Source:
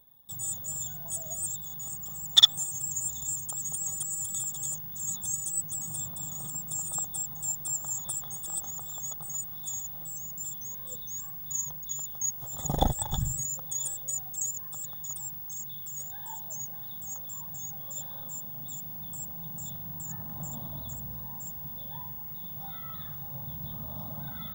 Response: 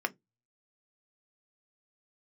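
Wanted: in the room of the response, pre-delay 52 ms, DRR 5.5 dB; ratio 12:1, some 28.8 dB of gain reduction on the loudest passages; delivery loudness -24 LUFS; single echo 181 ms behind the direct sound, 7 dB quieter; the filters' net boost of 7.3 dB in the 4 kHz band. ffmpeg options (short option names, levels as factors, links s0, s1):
-filter_complex "[0:a]equalizer=f=4000:t=o:g=8.5,acompressor=threshold=0.0178:ratio=12,aecho=1:1:181:0.447,asplit=2[s0][s1];[1:a]atrim=start_sample=2205,adelay=52[s2];[s1][s2]afir=irnorm=-1:irlink=0,volume=0.251[s3];[s0][s3]amix=inputs=2:normalize=0,volume=3.76"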